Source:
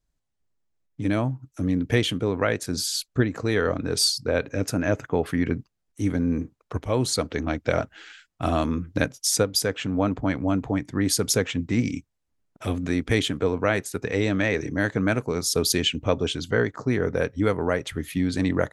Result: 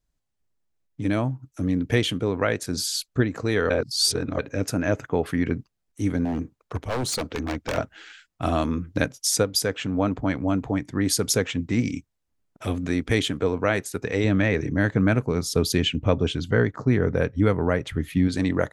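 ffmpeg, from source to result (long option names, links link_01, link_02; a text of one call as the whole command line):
ffmpeg -i in.wav -filter_complex "[0:a]asettb=1/sr,asplit=3[link_01][link_02][link_03];[link_01]atrim=end=6.254[link_04];[link_02]atrim=start=6.25:end=7.78,asetpts=PTS-STARTPTS,afade=type=in:duration=0.004:curve=qsin,afade=type=out:start_time=1.526:duration=0.004:curve=qsin,aeval=exprs='0.0944*(abs(mod(val(0)/0.0944+3,4)-2)-1)':channel_layout=same[link_05];[link_03]atrim=start=7.776[link_06];[link_04][link_05]acrossfade=duration=0.004:curve1=hsin:curve2=qsin[link_07];[link_07][link_06]acrossfade=duration=0.004:curve1=qsin:curve2=hsin,asettb=1/sr,asplit=3[link_08][link_09][link_10];[link_08]atrim=end=14.244[link_11];[link_09]atrim=start=14.24:end=18.28,asetpts=PTS-STARTPTS,afade=type=in:duration=0.004:curve=qsin,afade=type=out:start_time=4.036:duration=0.004:curve=qsin,bass=frequency=250:gain=6,treble=frequency=4000:gain=-6[link_12];[link_10]atrim=start=18.276[link_13];[link_11][link_12]acrossfade=duration=0.004:curve1=hsin:curve2=qsin[link_14];[link_14][link_13]acrossfade=duration=0.004:curve1=qsin:curve2=hsin,asplit=3[link_15][link_16][link_17];[link_15]atrim=end=3.702[link_18];[link_16]atrim=start=3.698:end=4.392,asetpts=PTS-STARTPTS,areverse[link_19];[link_17]atrim=start=4.388[link_20];[link_18][link_19]acrossfade=duration=0.004:curve1=hsin:curve2=hsin[link_21];[link_21][link_20]acrossfade=duration=0.004:curve1=hsin:curve2=hsin" out.wav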